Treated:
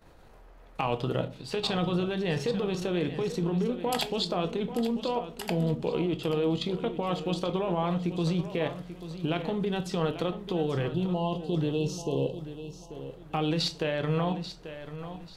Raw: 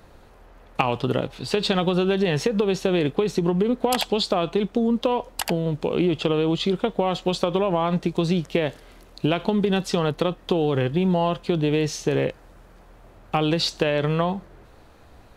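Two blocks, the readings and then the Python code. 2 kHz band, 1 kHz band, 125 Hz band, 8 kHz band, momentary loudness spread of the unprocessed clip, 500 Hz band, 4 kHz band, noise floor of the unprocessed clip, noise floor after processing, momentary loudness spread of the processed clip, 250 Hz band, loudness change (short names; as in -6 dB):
-7.5 dB, -7.0 dB, -5.0 dB, -8.0 dB, 4 LU, -7.0 dB, -6.5 dB, -50 dBFS, -51 dBFS, 11 LU, -6.5 dB, -7.0 dB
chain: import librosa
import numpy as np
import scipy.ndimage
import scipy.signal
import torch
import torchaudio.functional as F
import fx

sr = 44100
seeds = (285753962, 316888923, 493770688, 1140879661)

p1 = fx.level_steps(x, sr, step_db=13)
p2 = fx.spec_erase(p1, sr, start_s=10.9, length_s=2.01, low_hz=1100.0, high_hz=2600.0)
p3 = p2 + fx.echo_feedback(p2, sr, ms=838, feedback_pct=29, wet_db=-12.0, dry=0)
p4 = fx.room_shoebox(p3, sr, seeds[0], volume_m3=190.0, walls='furnished', distance_m=0.62)
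y = p4 * librosa.db_to_amplitude(-3.0)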